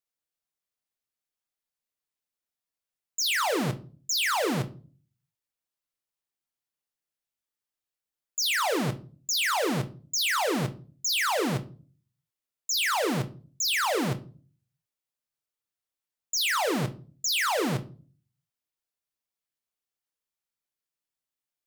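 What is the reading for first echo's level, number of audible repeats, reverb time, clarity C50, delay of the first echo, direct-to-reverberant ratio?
none, none, 0.40 s, 17.0 dB, none, 7.5 dB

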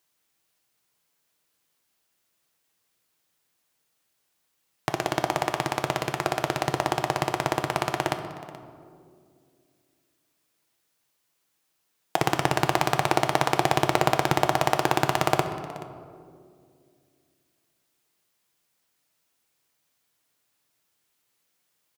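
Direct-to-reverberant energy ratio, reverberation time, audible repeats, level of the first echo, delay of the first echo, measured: 5.5 dB, 2.2 s, 1, -19.0 dB, 0.428 s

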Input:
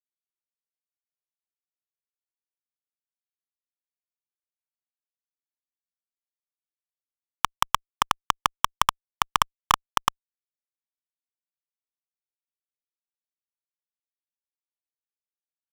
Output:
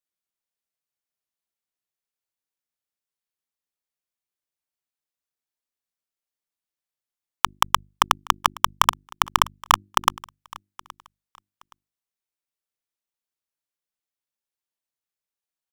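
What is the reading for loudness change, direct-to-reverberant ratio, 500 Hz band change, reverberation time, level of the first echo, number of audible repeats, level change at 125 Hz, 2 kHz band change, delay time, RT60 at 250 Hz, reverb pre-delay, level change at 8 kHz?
+4.0 dB, none, +4.0 dB, none, -22.5 dB, 1, +3.0 dB, +4.0 dB, 0.821 s, none, none, +4.0 dB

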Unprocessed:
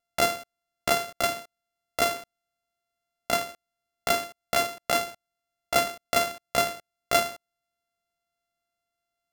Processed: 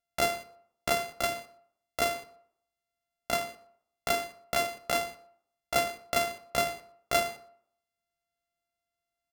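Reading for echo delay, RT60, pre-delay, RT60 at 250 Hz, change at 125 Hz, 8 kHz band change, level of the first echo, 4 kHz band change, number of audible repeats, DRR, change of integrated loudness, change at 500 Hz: 0.12 s, 0.65 s, 5 ms, 0.60 s, -2.5 dB, -4.5 dB, -21.5 dB, -4.5 dB, 1, 10.5 dB, -4.0 dB, -3.0 dB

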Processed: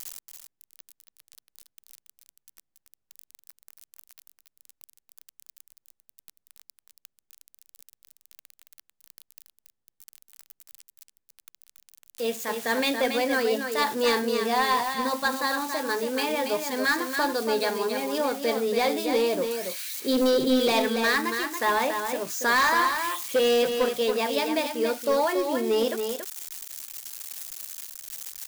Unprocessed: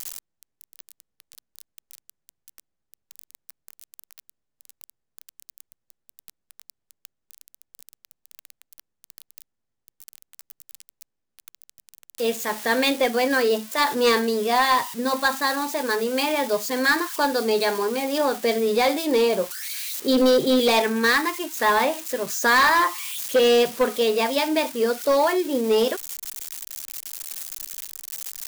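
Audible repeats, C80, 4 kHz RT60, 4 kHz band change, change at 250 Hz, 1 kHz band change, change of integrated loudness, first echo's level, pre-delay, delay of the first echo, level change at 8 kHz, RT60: 1, none, none, -3.5 dB, -3.5 dB, -3.5 dB, -3.5 dB, -6.5 dB, none, 0.28 s, -3.5 dB, none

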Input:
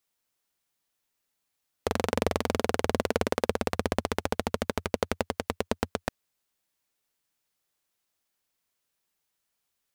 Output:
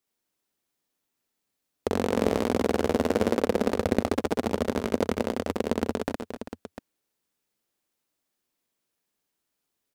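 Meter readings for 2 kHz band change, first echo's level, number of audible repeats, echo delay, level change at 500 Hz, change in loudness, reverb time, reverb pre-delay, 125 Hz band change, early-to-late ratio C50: -1.0 dB, -3.0 dB, 4, 64 ms, +4.0 dB, +3.5 dB, none, none, +1.5 dB, none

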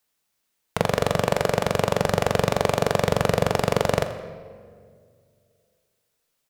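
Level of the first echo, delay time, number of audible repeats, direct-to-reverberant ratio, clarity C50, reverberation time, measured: -16.5 dB, 84 ms, 1, 8.0 dB, 10.0 dB, 2.1 s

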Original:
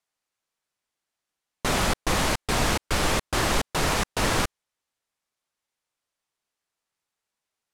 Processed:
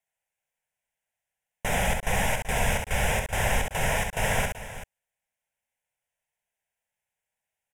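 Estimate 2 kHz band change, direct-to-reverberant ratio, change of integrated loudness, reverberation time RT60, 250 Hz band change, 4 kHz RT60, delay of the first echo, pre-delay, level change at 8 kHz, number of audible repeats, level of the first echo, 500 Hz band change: +0.5 dB, none, -2.0 dB, none, -6.0 dB, none, 66 ms, none, -2.5 dB, 2, -4.5 dB, -1.5 dB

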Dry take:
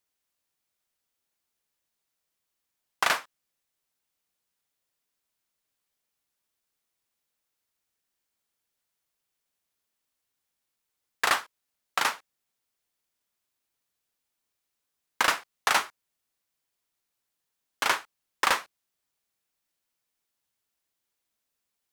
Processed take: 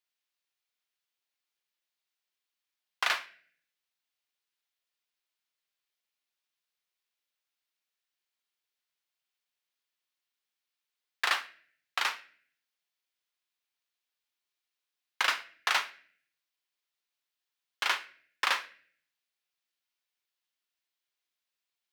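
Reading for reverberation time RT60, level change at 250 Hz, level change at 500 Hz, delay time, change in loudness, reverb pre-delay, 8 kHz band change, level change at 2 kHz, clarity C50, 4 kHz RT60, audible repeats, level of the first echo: 0.50 s, -13.0 dB, -9.5 dB, none, -3.5 dB, 3 ms, -7.5 dB, -3.0 dB, 16.5 dB, 0.45 s, none, none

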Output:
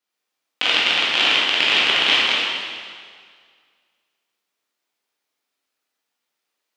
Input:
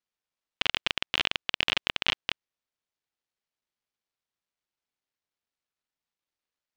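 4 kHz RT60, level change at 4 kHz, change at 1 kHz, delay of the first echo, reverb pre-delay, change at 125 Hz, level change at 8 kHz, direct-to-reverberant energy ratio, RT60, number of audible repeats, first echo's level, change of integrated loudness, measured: 1.8 s, +12.5 dB, +12.5 dB, none, 7 ms, n/a, +12.0 dB, -7.5 dB, 1.9 s, none, none, +12.0 dB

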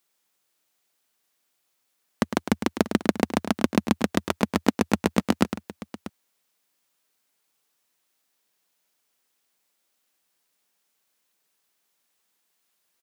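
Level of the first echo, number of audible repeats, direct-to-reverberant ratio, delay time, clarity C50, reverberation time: -10.0 dB, 2, none, 0.106 s, none, none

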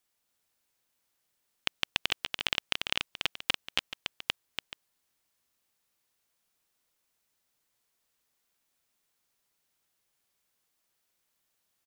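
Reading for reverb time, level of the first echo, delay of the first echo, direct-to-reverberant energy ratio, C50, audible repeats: none, -5.5 dB, 0.287 s, none, none, 2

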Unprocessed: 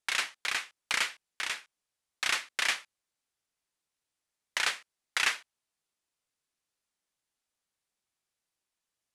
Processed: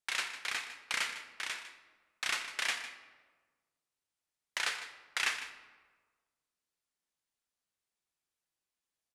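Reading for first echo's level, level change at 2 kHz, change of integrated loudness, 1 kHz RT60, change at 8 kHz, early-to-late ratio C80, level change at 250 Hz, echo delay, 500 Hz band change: -13.0 dB, -4.0 dB, -4.5 dB, 1.4 s, -4.5 dB, 9.5 dB, -3.5 dB, 0.153 s, -4.0 dB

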